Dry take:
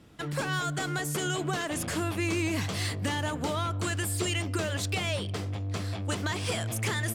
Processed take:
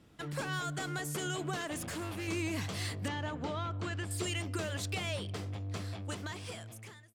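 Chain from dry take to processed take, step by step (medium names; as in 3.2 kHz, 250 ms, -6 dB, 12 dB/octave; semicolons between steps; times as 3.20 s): fade out at the end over 1.37 s; 1.76–2.28 s: hard clipper -30 dBFS, distortion -19 dB; 3.08–4.11 s: distance through air 130 m; trim -6 dB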